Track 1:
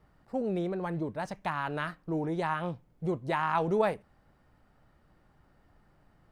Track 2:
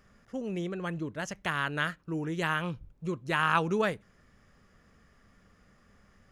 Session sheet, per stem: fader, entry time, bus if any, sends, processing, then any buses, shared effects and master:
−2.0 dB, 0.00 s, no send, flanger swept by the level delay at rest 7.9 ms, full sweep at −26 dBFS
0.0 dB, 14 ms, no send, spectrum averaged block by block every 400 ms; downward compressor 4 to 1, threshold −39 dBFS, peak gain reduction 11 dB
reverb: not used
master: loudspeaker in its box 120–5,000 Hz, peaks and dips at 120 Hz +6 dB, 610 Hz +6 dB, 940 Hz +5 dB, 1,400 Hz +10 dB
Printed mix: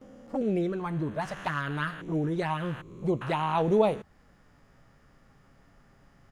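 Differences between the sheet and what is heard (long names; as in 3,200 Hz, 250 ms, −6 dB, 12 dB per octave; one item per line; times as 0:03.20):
stem 1 −2.0 dB → +5.0 dB
master: missing loudspeaker in its box 120–5,000 Hz, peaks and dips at 120 Hz +6 dB, 610 Hz +6 dB, 940 Hz +5 dB, 1,400 Hz +10 dB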